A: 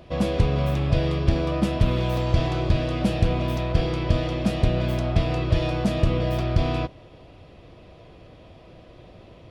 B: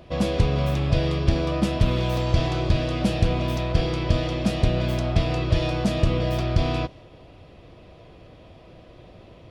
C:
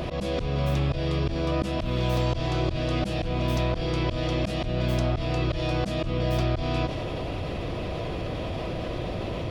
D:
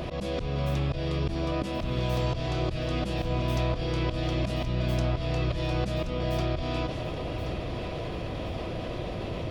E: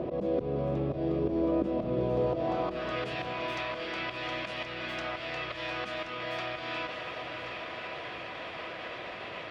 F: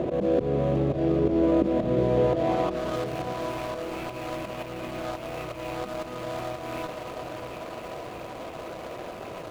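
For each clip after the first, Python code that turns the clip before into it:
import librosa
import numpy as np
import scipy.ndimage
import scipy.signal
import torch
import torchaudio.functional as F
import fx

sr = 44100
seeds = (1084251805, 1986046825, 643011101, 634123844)

y1 = fx.dynamic_eq(x, sr, hz=5700.0, q=0.72, threshold_db=-52.0, ratio=4.0, max_db=4)
y2 = fx.auto_swell(y1, sr, attack_ms=359.0)
y2 = fx.env_flatten(y2, sr, amount_pct=70)
y2 = y2 * librosa.db_to_amplitude(-1.0)
y3 = fx.echo_feedback(y2, sr, ms=1076, feedback_pct=40, wet_db=-10.5)
y3 = y3 * librosa.db_to_amplitude(-3.0)
y4 = fx.filter_sweep_bandpass(y3, sr, from_hz=390.0, to_hz=1800.0, start_s=2.16, end_s=3.04, q=1.4)
y4 = fx.echo_diffused(y4, sr, ms=780, feedback_pct=44, wet_db=-8.5)
y4 = y4 * librosa.db_to_amplitude(5.5)
y5 = scipy.signal.medfilt(y4, 25)
y5 = y5 * librosa.db_to_amplitude(6.5)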